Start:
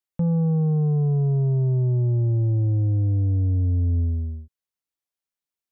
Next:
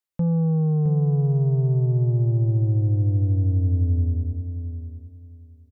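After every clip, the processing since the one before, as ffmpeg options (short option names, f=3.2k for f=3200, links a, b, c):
-af "aecho=1:1:664|1328|1992:0.355|0.0781|0.0172"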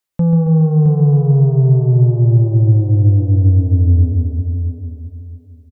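-af "aecho=1:1:137|274|411|548|685|822|959:0.376|0.21|0.118|0.066|0.037|0.0207|0.0116,volume=8dB"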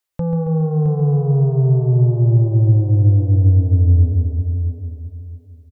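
-af "equalizer=f=200:w=2.2:g=-13"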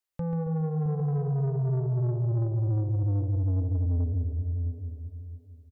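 -af "asoftclip=type=tanh:threshold=-15dB,volume=-8dB"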